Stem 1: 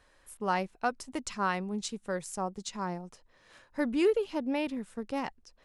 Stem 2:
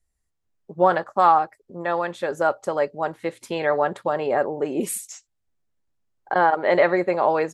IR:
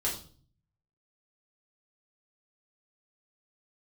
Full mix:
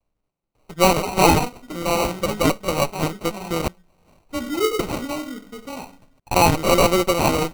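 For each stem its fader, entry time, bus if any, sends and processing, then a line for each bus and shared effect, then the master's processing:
-3.5 dB, 0.55 s, send -4.5 dB, dry
+3.0 dB, 0.00 s, muted 3.68–4.79, no send, minimum comb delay 5.7 ms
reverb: on, RT60 0.45 s, pre-delay 3 ms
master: sample-rate reducer 1700 Hz, jitter 0%

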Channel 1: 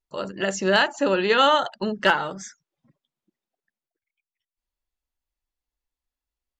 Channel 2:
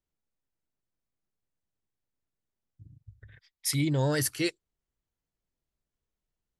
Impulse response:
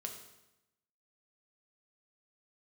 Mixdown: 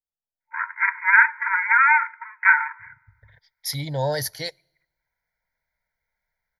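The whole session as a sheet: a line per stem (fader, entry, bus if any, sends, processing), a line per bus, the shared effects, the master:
+2.0 dB, 0.40 s, send -14 dB, minimum comb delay 1.4 ms; FFT band-pass 890–2500 Hz
-16.5 dB, 0.00 s, send -23.5 dB, band shelf 610 Hz +8.5 dB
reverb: on, RT60 0.95 s, pre-delay 4 ms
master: AGC gain up to 17 dB; high shelf 3700 Hz +7 dB; fixed phaser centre 1800 Hz, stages 8

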